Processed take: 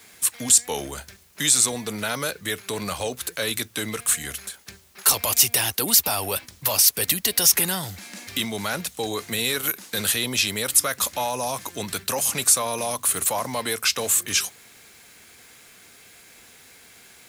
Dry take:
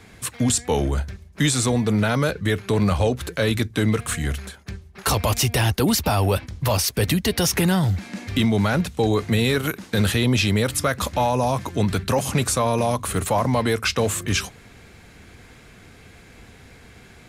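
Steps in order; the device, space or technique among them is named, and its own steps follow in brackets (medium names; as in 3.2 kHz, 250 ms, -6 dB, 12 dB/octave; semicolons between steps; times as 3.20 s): turntable without a phono preamp (RIAA curve recording; white noise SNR 33 dB); trim -4.5 dB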